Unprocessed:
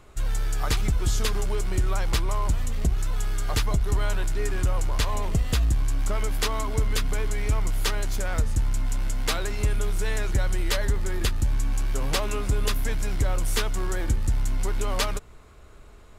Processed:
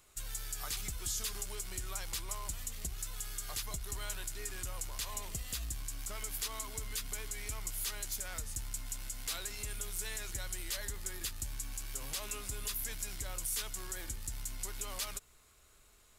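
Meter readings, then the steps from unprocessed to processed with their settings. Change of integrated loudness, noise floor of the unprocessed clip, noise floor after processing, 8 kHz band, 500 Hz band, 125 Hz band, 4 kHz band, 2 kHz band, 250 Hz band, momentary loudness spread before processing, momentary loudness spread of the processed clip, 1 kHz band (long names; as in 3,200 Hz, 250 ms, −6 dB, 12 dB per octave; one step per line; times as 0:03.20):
−12.0 dB, −47 dBFS, −63 dBFS, −2.5 dB, −18.5 dB, −20.0 dB, −9.0 dB, −12.5 dB, −20.0 dB, 3 LU, 4 LU, −15.0 dB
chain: first-order pre-emphasis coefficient 0.9
brickwall limiter −27 dBFS, peak gain reduction 10 dB
level +1 dB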